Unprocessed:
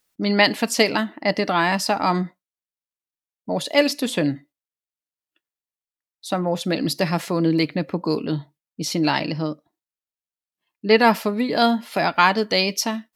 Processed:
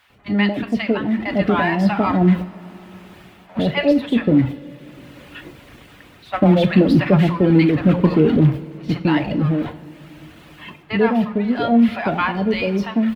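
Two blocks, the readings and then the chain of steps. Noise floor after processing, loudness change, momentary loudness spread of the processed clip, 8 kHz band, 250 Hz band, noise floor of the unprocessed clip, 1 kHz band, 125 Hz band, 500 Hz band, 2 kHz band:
-46 dBFS, +3.5 dB, 9 LU, under -15 dB, +7.5 dB, under -85 dBFS, -2.0 dB, +10.0 dB, +2.0 dB, -1.5 dB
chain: zero-crossing step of -21.5 dBFS; resonant high shelf 4300 Hz -13.5 dB, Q 1.5; bands offset in time highs, lows 0.1 s, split 770 Hz; gate -26 dBFS, range -13 dB; bit-crush 9-bit; reverb removal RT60 0.68 s; HPF 55 Hz; AGC gain up to 16 dB; tilt -3 dB/oct; two-slope reverb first 0.44 s, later 4.3 s, from -18 dB, DRR 8 dB; gain -6.5 dB

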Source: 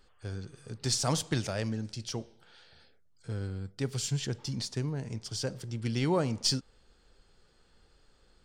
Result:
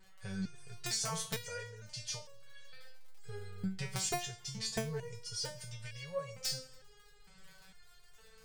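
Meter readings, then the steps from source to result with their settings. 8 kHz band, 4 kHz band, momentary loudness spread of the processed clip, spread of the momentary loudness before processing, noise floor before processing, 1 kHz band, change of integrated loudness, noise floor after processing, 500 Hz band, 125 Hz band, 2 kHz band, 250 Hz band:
-2.5 dB, -5.0 dB, 22 LU, 13 LU, -65 dBFS, -5.0 dB, -6.5 dB, -61 dBFS, -7.5 dB, -11.0 dB, -2.0 dB, -10.0 dB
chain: in parallel at -5 dB: soft clip -23.5 dBFS, distortion -17 dB; on the sum: compressor 16:1, threshold -29 dBFS, peak gain reduction 9.5 dB; ten-band EQ 125 Hz +7 dB, 250 Hz +12 dB, 2000 Hz +7 dB, 8000 Hz +5 dB; crackle 31/s -38 dBFS; elliptic band-stop 170–440 Hz, stop band 40 dB; bell 220 Hz +12 dB 0.21 oct; reverse; upward compressor, threshold -46 dBFS; reverse; vibrato 1.1 Hz 17 cents; digital reverb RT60 2.1 s, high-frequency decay 0.85×, pre-delay 25 ms, DRR 19 dB; wrapped overs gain 17.5 dB; stepped resonator 2.2 Hz 190–560 Hz; gain +7.5 dB

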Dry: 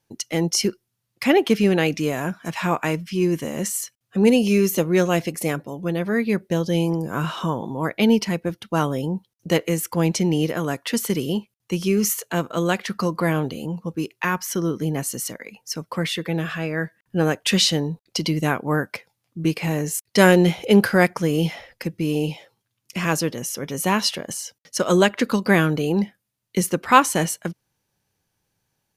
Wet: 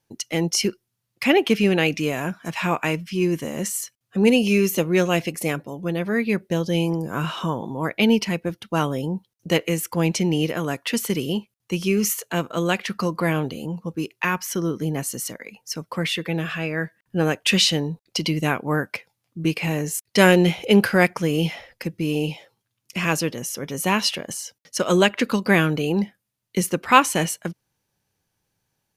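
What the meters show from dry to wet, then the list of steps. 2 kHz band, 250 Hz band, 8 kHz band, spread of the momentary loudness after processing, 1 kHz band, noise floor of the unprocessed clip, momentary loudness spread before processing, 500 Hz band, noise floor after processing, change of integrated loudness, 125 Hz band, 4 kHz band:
+1.0 dB, -1.0 dB, -1.0 dB, 12 LU, -1.0 dB, -77 dBFS, 11 LU, -1.0 dB, -78 dBFS, -0.5 dB, -1.0 dB, +1.5 dB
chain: dynamic EQ 2600 Hz, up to +6 dB, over -41 dBFS, Q 2.5; gain -1 dB

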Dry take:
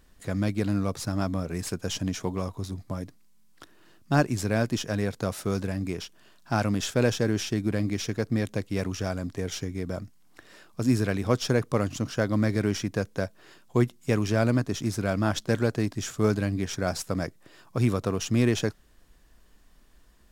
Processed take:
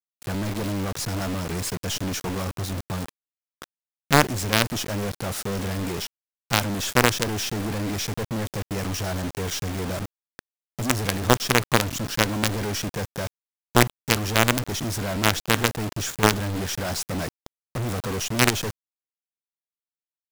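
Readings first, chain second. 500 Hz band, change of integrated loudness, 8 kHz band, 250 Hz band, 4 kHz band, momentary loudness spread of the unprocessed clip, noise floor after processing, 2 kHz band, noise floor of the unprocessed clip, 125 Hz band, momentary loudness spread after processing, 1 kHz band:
+0.5 dB, +3.0 dB, +9.0 dB, -1.0 dB, +9.5 dB, 9 LU, under -85 dBFS, +8.5 dB, -57 dBFS, +0.5 dB, 11 LU, +8.0 dB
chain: companded quantiser 2-bit; gain -1 dB

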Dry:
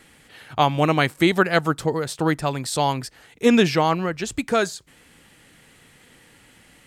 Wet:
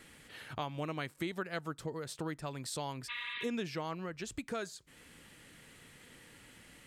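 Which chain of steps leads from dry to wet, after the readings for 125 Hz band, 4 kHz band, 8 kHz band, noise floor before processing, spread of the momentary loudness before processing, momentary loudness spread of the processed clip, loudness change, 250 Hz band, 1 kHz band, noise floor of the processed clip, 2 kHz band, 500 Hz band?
-17.5 dB, -16.0 dB, -14.0 dB, -54 dBFS, 11 LU, 18 LU, -18.5 dB, -19.0 dB, -20.0 dB, -60 dBFS, -17.0 dB, -19.0 dB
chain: spectral repair 3.12–3.42, 960–5000 Hz after; bell 780 Hz -4.5 dB 0.27 oct; compressor 2.5:1, threshold -38 dBFS, peak gain reduction 17.5 dB; gain -4.5 dB

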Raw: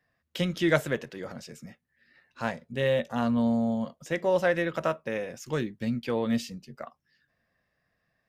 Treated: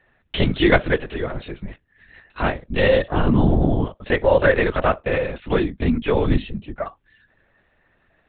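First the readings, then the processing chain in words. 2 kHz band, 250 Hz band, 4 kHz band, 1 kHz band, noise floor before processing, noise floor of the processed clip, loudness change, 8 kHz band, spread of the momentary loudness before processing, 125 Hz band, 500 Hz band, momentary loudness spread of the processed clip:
+9.5 dB, +6.5 dB, +8.5 dB, +9.0 dB, -78 dBFS, -64 dBFS, +8.0 dB, under -30 dB, 18 LU, +12.0 dB, +8.5 dB, 15 LU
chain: in parallel at +2.5 dB: compressor, threshold -35 dBFS, peak gain reduction 16.5 dB; on the sum: LPC vocoder at 8 kHz whisper; gain +6.5 dB

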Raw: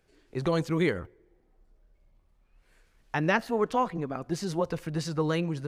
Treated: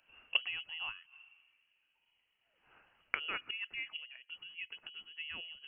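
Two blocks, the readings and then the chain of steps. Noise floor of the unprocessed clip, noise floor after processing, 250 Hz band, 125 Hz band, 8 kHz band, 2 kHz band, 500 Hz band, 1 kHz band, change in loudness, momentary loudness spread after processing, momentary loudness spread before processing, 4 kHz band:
-67 dBFS, -79 dBFS, -35.5 dB, under -35 dB, under -35 dB, -4.0 dB, -30.5 dB, -19.0 dB, -10.0 dB, 14 LU, 8 LU, +3.0 dB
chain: flipped gate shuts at -27 dBFS, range -25 dB; HPF 140 Hz 24 dB/oct; inverted band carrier 3100 Hz; three-band expander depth 40%; gain +8.5 dB

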